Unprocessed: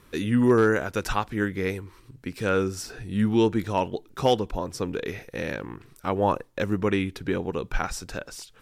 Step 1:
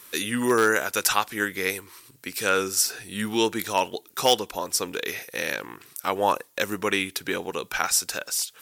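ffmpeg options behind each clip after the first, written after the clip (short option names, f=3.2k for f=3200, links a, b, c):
-af "highpass=f=740:p=1,aemphasis=mode=production:type=75kf,volume=4dB"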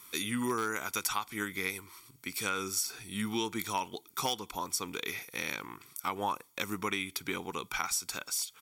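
-af "aecho=1:1:0.9:0.59,acompressor=threshold=-22dB:ratio=6,volume=-6.5dB"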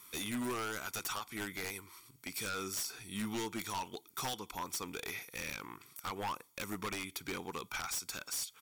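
-af "aeval=exprs='0.0376*(abs(mod(val(0)/0.0376+3,4)-2)-1)':c=same,volume=-3dB"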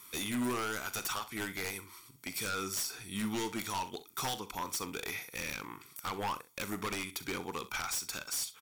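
-af "aecho=1:1:41|65:0.178|0.158,volume=2.5dB"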